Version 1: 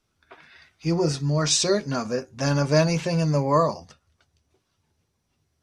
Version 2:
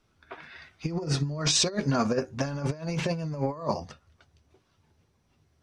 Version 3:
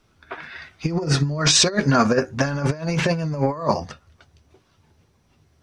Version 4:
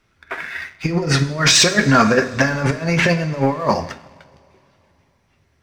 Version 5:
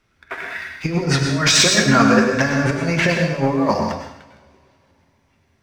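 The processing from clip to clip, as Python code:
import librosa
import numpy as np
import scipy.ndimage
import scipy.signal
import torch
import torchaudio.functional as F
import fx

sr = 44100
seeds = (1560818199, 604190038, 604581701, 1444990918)

y1 = fx.high_shelf(x, sr, hz=5000.0, db=-10.0)
y1 = fx.over_compress(y1, sr, threshold_db=-27.0, ratio=-0.5)
y2 = fx.dynamic_eq(y1, sr, hz=1600.0, q=1.8, threshold_db=-49.0, ratio=4.0, max_db=6)
y2 = y2 * librosa.db_to_amplitude(7.5)
y3 = fx.peak_eq(y2, sr, hz=2000.0, db=8.5, octaves=0.82)
y3 = fx.rev_double_slope(y3, sr, seeds[0], early_s=0.52, late_s=3.1, knee_db=-16, drr_db=8.0)
y3 = fx.leveller(y3, sr, passes=1)
y3 = y3 * librosa.db_to_amplitude(-1.0)
y4 = fx.rev_plate(y3, sr, seeds[1], rt60_s=0.68, hf_ratio=0.95, predelay_ms=90, drr_db=3.5)
y4 = y4 * librosa.db_to_amplitude(-2.0)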